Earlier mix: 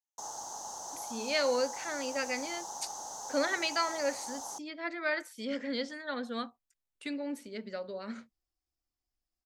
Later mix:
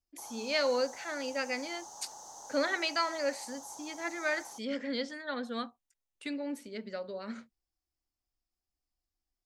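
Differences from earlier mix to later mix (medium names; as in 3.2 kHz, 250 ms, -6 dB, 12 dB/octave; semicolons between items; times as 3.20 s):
speech: entry -0.80 s; background -6.5 dB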